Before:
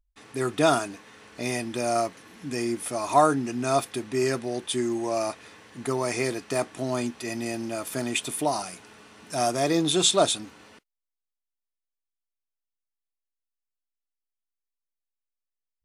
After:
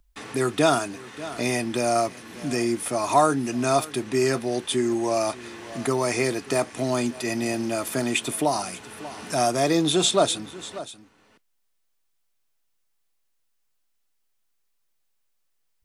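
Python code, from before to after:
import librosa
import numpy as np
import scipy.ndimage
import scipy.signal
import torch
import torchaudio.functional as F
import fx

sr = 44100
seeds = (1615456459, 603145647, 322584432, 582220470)

y = x + 10.0 ** (-21.5 / 20.0) * np.pad(x, (int(588 * sr / 1000.0), 0))[:len(x)]
y = fx.band_squash(y, sr, depth_pct=40)
y = y * librosa.db_to_amplitude(3.0)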